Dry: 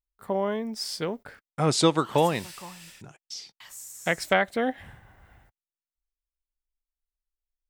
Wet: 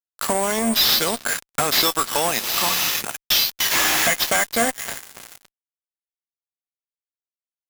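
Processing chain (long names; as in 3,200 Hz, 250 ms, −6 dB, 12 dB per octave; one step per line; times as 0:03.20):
downward compressor 6 to 1, threshold −38 dBFS, peak gain reduction 21 dB
high-pass filter 110 Hz 12 dB per octave
low-shelf EQ 330 Hz −5.5 dB
tuned comb filter 230 Hz, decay 0.16 s, harmonics odd, mix 70%
decimation without filtering 5×
spectral tilt +3 dB per octave
feedback echo with a low-pass in the loop 282 ms, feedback 76%, low-pass 4,800 Hz, level −17 dB
fuzz pedal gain 51 dB, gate −56 dBFS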